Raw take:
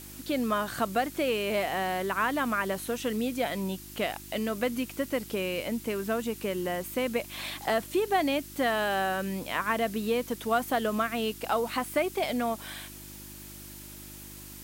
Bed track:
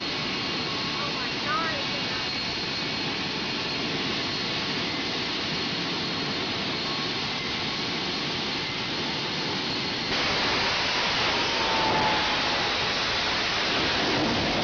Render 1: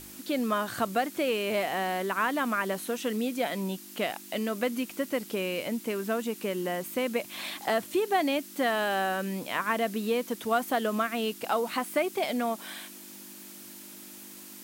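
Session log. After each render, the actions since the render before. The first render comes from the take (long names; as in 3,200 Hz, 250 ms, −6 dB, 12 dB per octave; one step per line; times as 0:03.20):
hum removal 50 Hz, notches 3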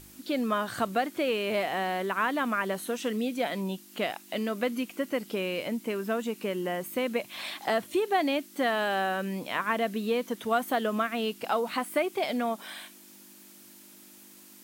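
noise reduction from a noise print 6 dB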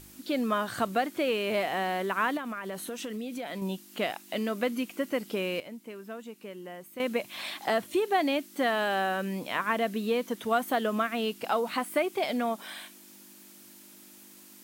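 0:02.37–0:03.62: downward compressor 10 to 1, threshold −32 dBFS
0:05.60–0:07.00: clip gain −11 dB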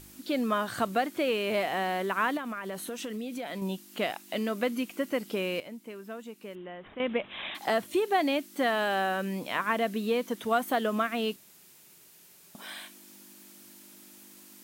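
0:06.55–0:07.55: bad sample-rate conversion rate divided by 6×, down none, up filtered
0:11.36–0:12.55: fill with room tone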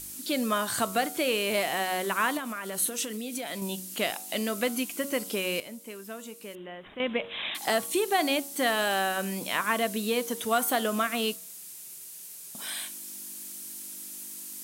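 parametric band 10,000 Hz +15 dB 2 octaves
hum removal 93.42 Hz, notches 16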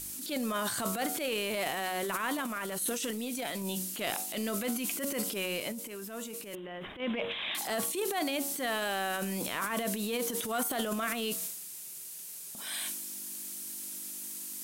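transient designer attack −11 dB, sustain +10 dB
downward compressor 3 to 1, threshold −31 dBFS, peak gain reduction 8.5 dB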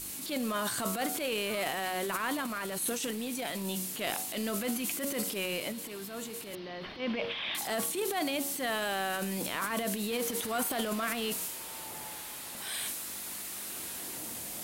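mix in bed track −22.5 dB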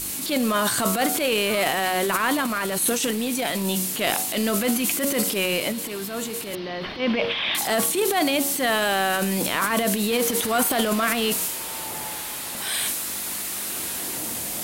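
level +10.5 dB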